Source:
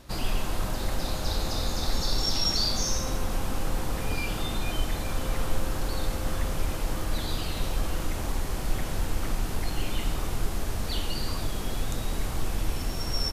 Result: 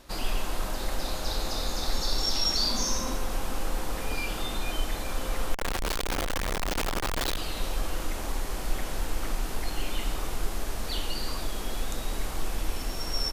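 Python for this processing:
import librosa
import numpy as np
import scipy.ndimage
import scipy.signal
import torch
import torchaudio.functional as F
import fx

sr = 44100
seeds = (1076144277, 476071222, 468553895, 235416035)

y = fx.small_body(x, sr, hz=(240.0, 1000.0), ring_ms=45, db=8, at=(2.62, 3.15))
y = fx.schmitt(y, sr, flips_db=-42.0, at=(5.54, 7.37))
y = fx.peak_eq(y, sr, hz=110.0, db=-11.0, octaves=1.6)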